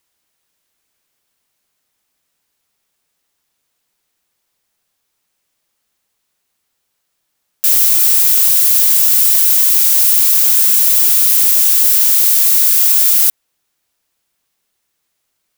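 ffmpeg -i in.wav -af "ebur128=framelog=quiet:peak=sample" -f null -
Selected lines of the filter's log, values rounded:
Integrated loudness:
  I:          -7.2 LUFS
  Threshold: -21.2 LUFS
Loudness range:
  LRA:         6.0 LU
  Threshold: -30.4 LUFS
  LRA low:   -12.9 LUFS
  LRA high:   -6.9 LUFS
Sample peak:
  Peak:       -1.8 dBFS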